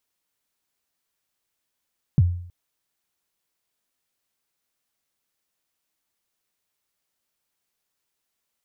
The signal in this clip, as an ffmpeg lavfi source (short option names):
-f lavfi -i "aevalsrc='0.316*pow(10,-3*t/0.6)*sin(2*PI*(170*0.036/log(88/170)*(exp(log(88/170)*min(t,0.036)/0.036)-1)+88*max(t-0.036,0)))':d=0.32:s=44100"